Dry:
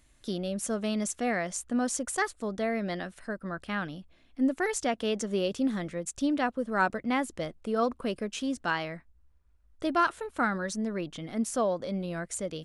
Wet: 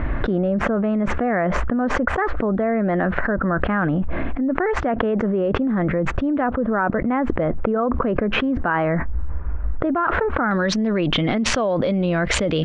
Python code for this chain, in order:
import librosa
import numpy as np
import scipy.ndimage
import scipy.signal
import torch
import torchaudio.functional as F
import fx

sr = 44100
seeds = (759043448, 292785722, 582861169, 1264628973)

y = fx.lowpass(x, sr, hz=fx.steps((0.0, 1700.0), (10.51, 3300.0)), slope=24)
y = fx.env_flatten(y, sr, amount_pct=100)
y = y * librosa.db_to_amplitude(2.0)